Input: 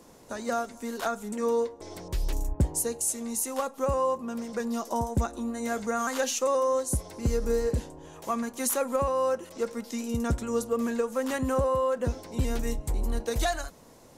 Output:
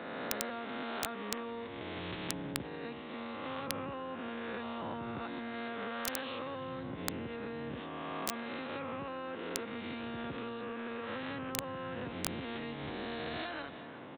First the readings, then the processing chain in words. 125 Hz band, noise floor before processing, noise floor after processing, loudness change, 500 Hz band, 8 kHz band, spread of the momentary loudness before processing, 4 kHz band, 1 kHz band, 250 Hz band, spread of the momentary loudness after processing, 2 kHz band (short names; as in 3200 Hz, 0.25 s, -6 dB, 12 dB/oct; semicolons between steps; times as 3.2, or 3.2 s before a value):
-14.0 dB, -52 dBFS, -45 dBFS, -10.5 dB, -13.0 dB, -13.5 dB, 8 LU, -1.5 dB, -9.5 dB, -8.5 dB, 4 LU, -2.5 dB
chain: spectral swells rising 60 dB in 1.41 s; HPF 120 Hz 24 dB/oct; bell 280 Hz +10 dB 0.77 oct; in parallel at +2 dB: limiter -17 dBFS, peak gain reduction 9 dB; on the sum: compressor 8:1, threshold -19 dBFS, peak gain reduction 9.5 dB; downsampling 8000 Hz; air absorption 170 m; echo 0.362 s -21.5 dB; wrapped overs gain 14 dB; spectral compressor 2:1; gain +6 dB